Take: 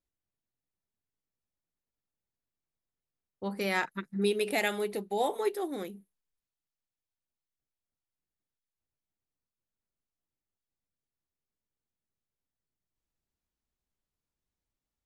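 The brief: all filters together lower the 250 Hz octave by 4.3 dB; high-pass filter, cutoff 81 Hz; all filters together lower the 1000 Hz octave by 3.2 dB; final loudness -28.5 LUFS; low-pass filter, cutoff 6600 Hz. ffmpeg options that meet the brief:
-af "highpass=81,lowpass=6.6k,equalizer=f=250:t=o:g=-6,equalizer=f=1k:t=o:g=-4,volume=5.5dB"

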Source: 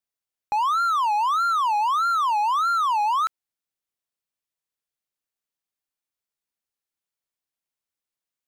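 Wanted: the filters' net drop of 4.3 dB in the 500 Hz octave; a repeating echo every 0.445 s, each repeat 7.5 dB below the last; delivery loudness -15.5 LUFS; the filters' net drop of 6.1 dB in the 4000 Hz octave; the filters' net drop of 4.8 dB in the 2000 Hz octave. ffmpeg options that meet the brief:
-af "equalizer=f=500:t=o:g=-5.5,equalizer=f=2k:t=o:g=-7,equalizer=f=4k:t=o:g=-5,aecho=1:1:445|890|1335|1780|2225:0.422|0.177|0.0744|0.0312|0.0131,volume=9dB"

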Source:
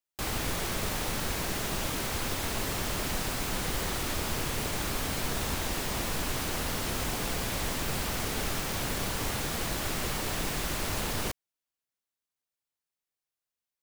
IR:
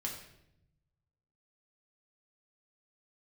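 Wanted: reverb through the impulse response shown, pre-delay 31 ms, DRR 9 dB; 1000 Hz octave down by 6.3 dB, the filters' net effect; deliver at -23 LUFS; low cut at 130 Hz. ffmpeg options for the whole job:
-filter_complex "[0:a]highpass=130,equalizer=f=1k:t=o:g=-8.5,asplit=2[a][b];[1:a]atrim=start_sample=2205,adelay=31[c];[b][c]afir=irnorm=-1:irlink=0,volume=-9.5dB[d];[a][d]amix=inputs=2:normalize=0,volume=9dB"

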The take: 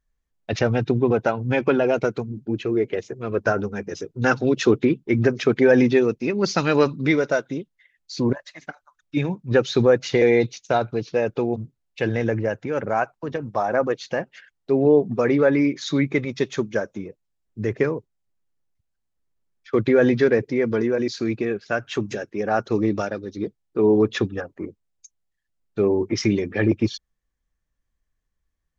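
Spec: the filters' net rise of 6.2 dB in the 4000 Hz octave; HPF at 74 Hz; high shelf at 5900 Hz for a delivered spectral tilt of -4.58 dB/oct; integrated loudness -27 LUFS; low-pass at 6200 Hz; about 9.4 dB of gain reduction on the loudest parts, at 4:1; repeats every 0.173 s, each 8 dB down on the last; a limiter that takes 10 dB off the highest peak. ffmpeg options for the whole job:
-af "highpass=74,lowpass=6.2k,equalizer=f=4k:t=o:g=6,highshelf=f=5.9k:g=6.5,acompressor=threshold=-23dB:ratio=4,alimiter=limit=-20.5dB:level=0:latency=1,aecho=1:1:173|346|519|692|865:0.398|0.159|0.0637|0.0255|0.0102,volume=3.5dB"

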